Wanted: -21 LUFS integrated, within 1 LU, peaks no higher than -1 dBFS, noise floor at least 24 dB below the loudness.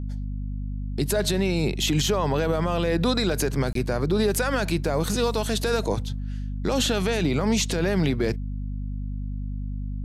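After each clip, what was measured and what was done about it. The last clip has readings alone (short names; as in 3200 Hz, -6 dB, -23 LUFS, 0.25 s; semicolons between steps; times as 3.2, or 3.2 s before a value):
dropouts 1; longest dropout 23 ms; hum 50 Hz; harmonics up to 250 Hz; hum level -27 dBFS; loudness -25.5 LUFS; peak -12.0 dBFS; loudness target -21.0 LUFS
-> interpolate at 3.73, 23 ms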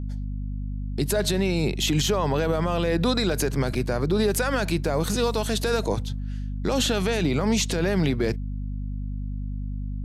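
dropouts 0; hum 50 Hz; harmonics up to 250 Hz; hum level -27 dBFS
-> notches 50/100/150/200/250 Hz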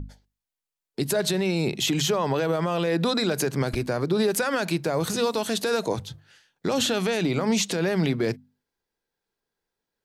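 hum none; loudness -25.0 LUFS; peak -12.5 dBFS; loudness target -21.0 LUFS
-> gain +4 dB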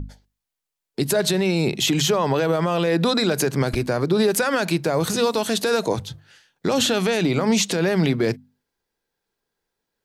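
loudness -21.0 LUFS; peak -8.5 dBFS; noise floor -84 dBFS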